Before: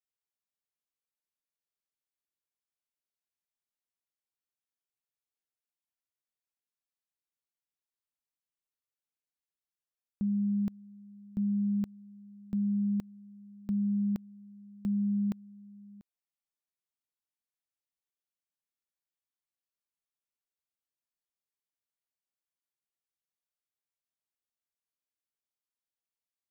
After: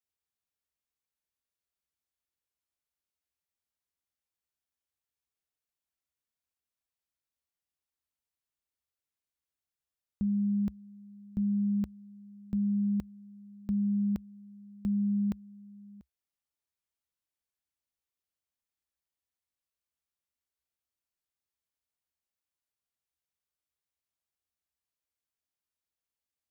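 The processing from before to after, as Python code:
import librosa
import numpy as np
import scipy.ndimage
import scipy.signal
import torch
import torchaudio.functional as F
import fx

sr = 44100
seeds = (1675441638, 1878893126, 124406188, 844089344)

y = fx.peak_eq(x, sr, hz=66.0, db=13.0, octaves=0.82)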